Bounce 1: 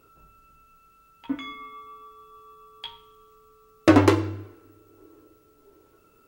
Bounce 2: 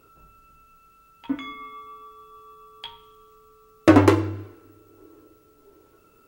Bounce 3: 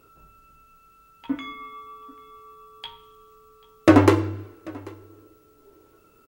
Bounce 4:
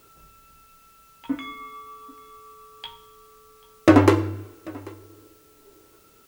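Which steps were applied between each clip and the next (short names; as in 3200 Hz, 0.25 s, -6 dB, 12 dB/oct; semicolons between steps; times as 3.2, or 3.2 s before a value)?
dynamic EQ 4500 Hz, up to -4 dB, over -46 dBFS, Q 0.82; gain +2 dB
echo 0.789 s -23.5 dB
requantised 10-bit, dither triangular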